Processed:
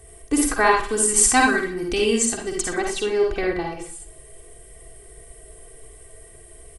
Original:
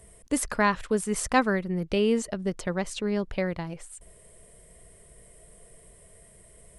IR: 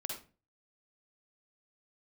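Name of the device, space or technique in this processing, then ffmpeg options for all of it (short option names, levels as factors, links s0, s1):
microphone above a desk: -filter_complex "[0:a]asettb=1/sr,asplit=3[s0][s1][s2];[s0]atrim=end=0.914[s3];[s1]atrim=start=0.91:end=2.78,asetpts=PTS-STARTPTS,afade=t=in:d=0.004:c=qsin,afade=t=out:st=1.866:d=0.004:c=qsin,equalizer=f=125:t=o:w=1:g=-3,equalizer=f=250:t=o:w=1:g=4,equalizer=f=500:t=o:w=1:g=-9,equalizer=f=8000:t=o:w=1:g=12[s4];[s2]atrim=start=2.776[s5];[s3][s4]acrossfade=d=0.004:c1=hsin:c2=qsin[s6];[s6][s5]acrossfade=d=0.004:c1=qsin:c2=hsin,aecho=1:1:2.6:0.83[s7];[1:a]atrim=start_sample=2205[s8];[s7][s8]afir=irnorm=-1:irlink=0,aecho=1:1:120|240|360:0.1|0.037|0.0137,volume=1.88"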